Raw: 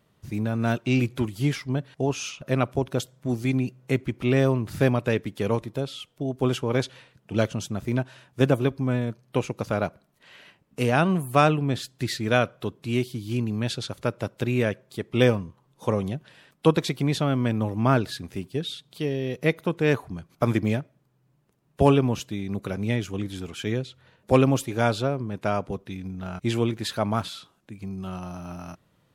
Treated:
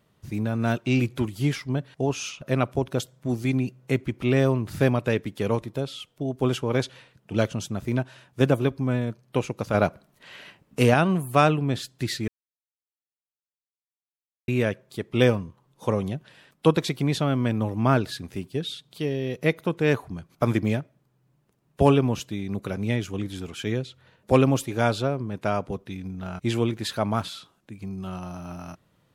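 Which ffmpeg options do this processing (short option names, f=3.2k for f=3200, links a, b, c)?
-filter_complex "[0:a]asettb=1/sr,asplit=3[a][b][c];[a]atrim=end=9.744[d];[b]atrim=start=9.74:end=10.94,asetpts=PTS-STARTPTS,afade=t=in:d=0.004:c=qsin,afade=t=out:st=1.196:d=0.004:c=qsin,acontrast=32[e];[c]atrim=start=10.936[f];[d][e]acrossfade=d=0.004:c1=hsin:c2=qsin[g];[g][f]acrossfade=d=0.004:c1=qsin:c2=hsin,asplit=3[h][i][j];[h]atrim=end=12.28,asetpts=PTS-STARTPTS,afade=t=out:st=12.276:d=0.004:c=hsin[k];[i]atrim=start=12.28:end=14.48,asetpts=PTS-STARTPTS,volume=0[l];[j]atrim=start=14.48,asetpts=PTS-STARTPTS,afade=t=in:d=0.004:c=hsin[m];[k][l][m]concat=n=3:v=0:a=1"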